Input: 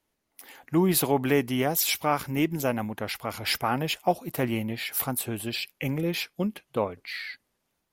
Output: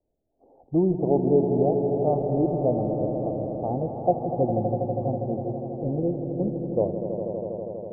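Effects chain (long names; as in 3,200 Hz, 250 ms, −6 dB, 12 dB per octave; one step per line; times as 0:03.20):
Butterworth low-pass 700 Hz 48 dB per octave
parametric band 220 Hz −7.5 dB 1.8 octaves
on a send: echo that builds up and dies away 81 ms, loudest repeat 5, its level −10 dB
on the sum: level +6.5 dB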